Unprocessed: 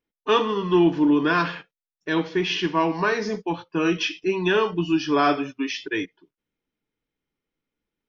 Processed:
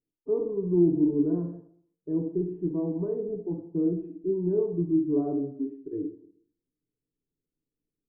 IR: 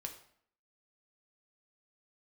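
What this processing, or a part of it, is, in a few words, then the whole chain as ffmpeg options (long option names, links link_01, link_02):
next room: -filter_complex "[0:a]lowpass=frequency=440:width=0.5412,lowpass=frequency=440:width=1.3066[link_01];[1:a]atrim=start_sample=2205[link_02];[link_01][link_02]afir=irnorm=-1:irlink=0"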